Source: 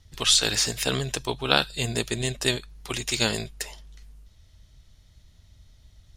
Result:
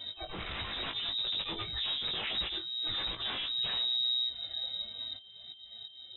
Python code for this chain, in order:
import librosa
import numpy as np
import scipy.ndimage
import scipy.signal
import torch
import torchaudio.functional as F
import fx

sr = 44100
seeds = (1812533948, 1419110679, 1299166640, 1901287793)

p1 = fx.hpss_only(x, sr, part='harmonic')
p2 = scipy.signal.sosfilt(scipy.signal.butter(4, 44.0, 'highpass', fs=sr, output='sos'), p1)
p3 = fx.dynamic_eq(p2, sr, hz=310.0, q=7.6, threshold_db=-55.0, ratio=4.0, max_db=-5)
p4 = fx.auto_swell(p3, sr, attack_ms=652.0)
p5 = fx.over_compress(p4, sr, threshold_db=-44.0, ratio=-1.0)
p6 = p4 + (p5 * librosa.db_to_amplitude(1.5))
p7 = fx.pitch_keep_formants(p6, sr, semitones=3.5)
p8 = 10.0 ** (-36.5 / 20.0) * (np.abs((p7 / 10.0 ** (-36.5 / 20.0) + 3.0) % 4.0 - 2.0) - 1.0)
p9 = p8 + 10.0 ** (-53.0 / 20.0) * np.sin(2.0 * np.pi * 660.0 * np.arange(len(p8)) / sr)
p10 = p9 + fx.room_early_taps(p9, sr, ms=(19, 53), db=(-5.5, -17.5), dry=0)
p11 = fx.freq_invert(p10, sr, carrier_hz=3800)
y = p11 * librosa.db_to_amplitude(4.5)